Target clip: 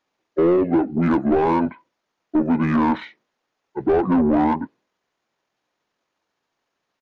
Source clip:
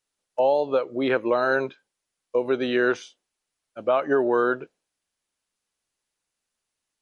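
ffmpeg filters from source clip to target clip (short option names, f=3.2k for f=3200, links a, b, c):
-filter_complex "[0:a]asplit=2[a][b];[b]highpass=f=720:p=1,volume=22dB,asoftclip=type=tanh:threshold=-8.5dB[c];[a][c]amix=inputs=2:normalize=0,lowpass=f=1.2k:p=1,volume=-6dB,asetrate=27781,aresample=44100,atempo=1.5874"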